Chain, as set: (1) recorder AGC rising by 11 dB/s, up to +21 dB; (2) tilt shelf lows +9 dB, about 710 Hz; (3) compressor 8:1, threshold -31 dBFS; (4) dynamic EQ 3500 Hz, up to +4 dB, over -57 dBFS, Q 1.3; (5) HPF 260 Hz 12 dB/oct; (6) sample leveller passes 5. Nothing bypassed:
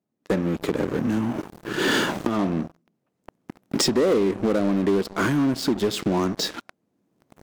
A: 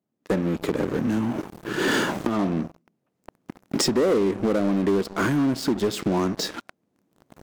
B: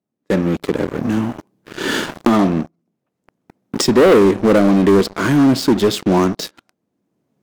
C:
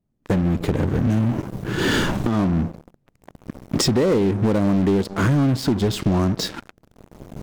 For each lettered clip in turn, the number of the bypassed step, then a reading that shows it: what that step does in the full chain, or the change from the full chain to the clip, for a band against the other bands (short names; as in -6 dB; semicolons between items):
4, 4 kHz band -2.0 dB; 3, mean gain reduction 6.0 dB; 5, 125 Hz band +9.5 dB